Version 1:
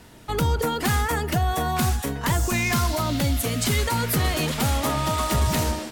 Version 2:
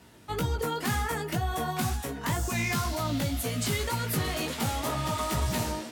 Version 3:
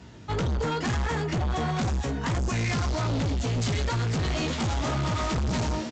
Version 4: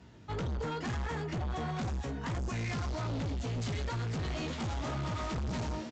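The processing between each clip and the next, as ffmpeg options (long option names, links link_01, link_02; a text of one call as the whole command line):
ffmpeg -i in.wav -af "flanger=delay=15.5:depth=4:speed=2,highpass=72,volume=-3dB" out.wav
ffmpeg -i in.wav -af "equalizer=frequency=84:width=0.44:gain=9,aresample=16000,asoftclip=type=hard:threshold=-28dB,aresample=44100,volume=3.5dB" out.wav
ffmpeg -i in.wav -af "highshelf=frequency=4900:gain=-5,volume=-8dB" out.wav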